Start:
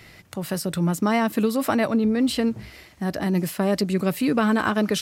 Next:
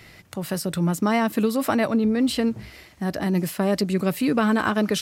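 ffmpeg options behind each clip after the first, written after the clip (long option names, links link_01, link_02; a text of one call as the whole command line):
ffmpeg -i in.wav -af anull out.wav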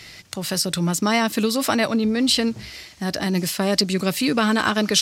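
ffmpeg -i in.wav -af "equalizer=frequency=5200:width=0.56:gain=13" out.wav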